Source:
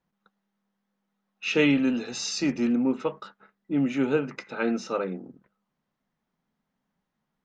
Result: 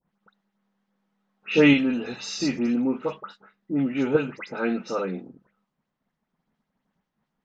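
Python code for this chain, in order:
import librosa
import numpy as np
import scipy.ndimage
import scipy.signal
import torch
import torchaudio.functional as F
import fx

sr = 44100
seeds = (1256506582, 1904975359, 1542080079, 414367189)

p1 = fx.level_steps(x, sr, step_db=20)
p2 = x + (p1 * librosa.db_to_amplitude(1.5))
p3 = fx.air_absorb(p2, sr, metres=84.0)
p4 = fx.dispersion(p3, sr, late='highs', ms=102.0, hz=2700.0)
y = p4 * librosa.db_to_amplitude(-1.0)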